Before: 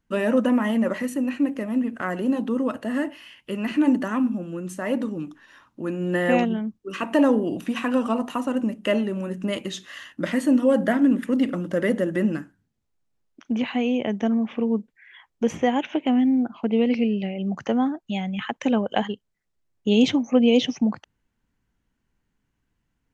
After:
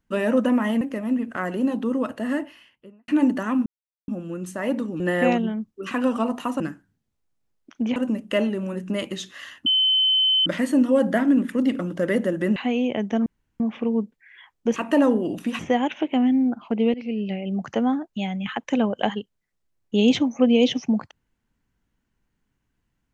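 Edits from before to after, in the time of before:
0.81–1.46 cut
2.97–3.73 studio fade out
4.31 insert silence 0.42 s
5.23–6.07 cut
6.98–7.81 move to 15.52
10.2 add tone 3060 Hz -16 dBFS 0.80 s
12.3–13.66 move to 8.5
14.36 insert room tone 0.34 s
16.87–17.25 fade in, from -18.5 dB

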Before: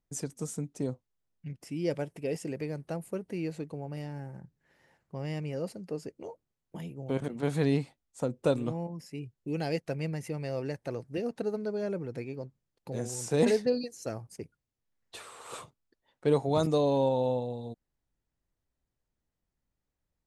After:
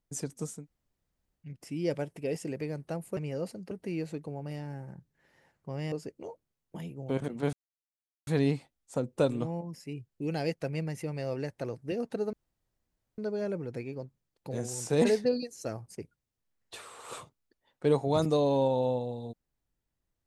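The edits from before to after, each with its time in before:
0.56–1.46 room tone, crossfade 0.24 s
5.38–5.92 move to 3.17
7.53 insert silence 0.74 s
11.59 insert room tone 0.85 s

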